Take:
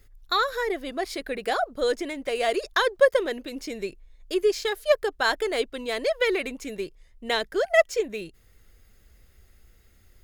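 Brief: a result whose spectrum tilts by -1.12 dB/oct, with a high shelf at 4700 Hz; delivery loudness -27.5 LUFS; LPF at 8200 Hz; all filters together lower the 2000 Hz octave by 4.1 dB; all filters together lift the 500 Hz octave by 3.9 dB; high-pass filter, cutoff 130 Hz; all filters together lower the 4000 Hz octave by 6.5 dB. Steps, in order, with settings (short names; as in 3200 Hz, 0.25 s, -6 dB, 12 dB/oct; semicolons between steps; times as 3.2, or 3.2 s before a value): HPF 130 Hz; LPF 8200 Hz; bell 500 Hz +5 dB; bell 2000 Hz -4 dB; bell 4000 Hz -4.5 dB; high shelf 4700 Hz -4.5 dB; gain -4 dB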